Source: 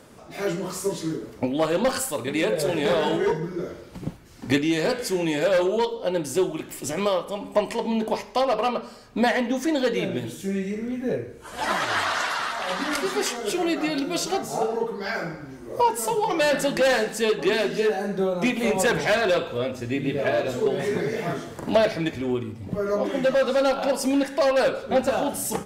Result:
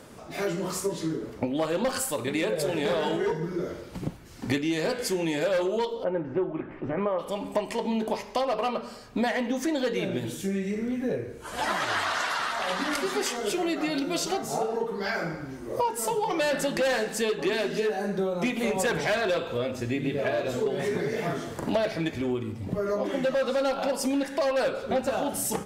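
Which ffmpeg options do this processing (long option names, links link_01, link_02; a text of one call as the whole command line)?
ffmpeg -i in.wav -filter_complex "[0:a]asettb=1/sr,asplit=3[link_01][link_02][link_03];[link_01]atrim=end=0.804[link_04];[link_02]atrim=start=0.8:end=1.56,asetpts=PTS-STARTPTS,afade=type=in:duration=0.004:curve=qsin,afade=type=out:start_time=0.756:duration=0.004:curve=qsin,highshelf=frequency=4800:gain=-5.5[link_05];[link_03]atrim=start=1.556[link_06];[link_04][link_05]acrossfade=duration=0.004:curve1=hsin:curve2=qsin[link_07];[link_07][link_06]acrossfade=duration=0.004:curve1=qsin:curve2=hsin,asplit=3[link_08][link_09][link_10];[link_08]afade=type=out:start_time=6.03:duration=0.02[link_11];[link_09]lowpass=frequency=1900:width=0.5412,lowpass=frequency=1900:width=1.3066,afade=type=in:start_time=6.03:duration=0.02,afade=type=out:start_time=7.18:duration=0.02[link_12];[link_10]afade=type=in:start_time=7.18:duration=0.02[link_13];[link_11][link_12][link_13]amix=inputs=3:normalize=0,acompressor=threshold=-28dB:ratio=2.5,volume=1.5dB" out.wav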